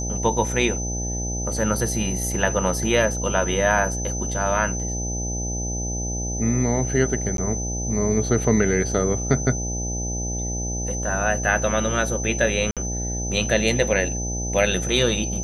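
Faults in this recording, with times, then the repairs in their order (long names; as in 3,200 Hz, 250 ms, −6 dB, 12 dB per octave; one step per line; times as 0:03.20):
mains buzz 60 Hz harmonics 14 −28 dBFS
whistle 6,100 Hz −29 dBFS
0:07.37–0:07.38: drop-out 12 ms
0:12.71–0:12.77: drop-out 57 ms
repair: notch filter 6,100 Hz, Q 30
hum removal 60 Hz, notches 14
repair the gap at 0:07.37, 12 ms
repair the gap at 0:12.71, 57 ms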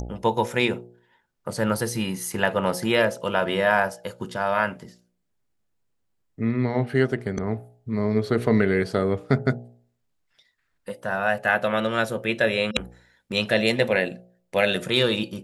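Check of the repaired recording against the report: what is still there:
none of them is left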